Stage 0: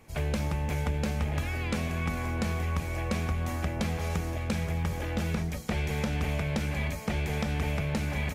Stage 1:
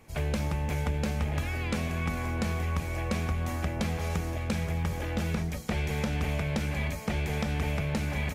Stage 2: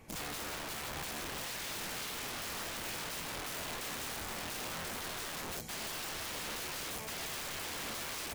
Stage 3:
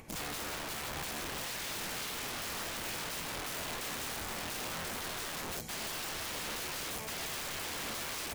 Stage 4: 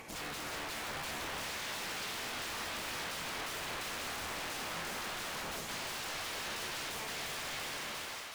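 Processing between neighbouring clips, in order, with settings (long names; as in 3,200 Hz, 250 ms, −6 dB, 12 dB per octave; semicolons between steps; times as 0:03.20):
no processing that can be heard
in parallel at −1 dB: brickwall limiter −27.5 dBFS, peak gain reduction 11 dB; on the sum: wrap-around overflow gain 29.5 dB; level −6.5 dB
upward compression, threshold −52 dBFS; level +1.5 dB
fade-out on the ending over 0.77 s; mid-hump overdrive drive 19 dB, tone 7,000 Hz, clips at −34 dBFS; echo with a time of its own for lows and highs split 590 Hz, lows 137 ms, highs 369 ms, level −5 dB; level −3.5 dB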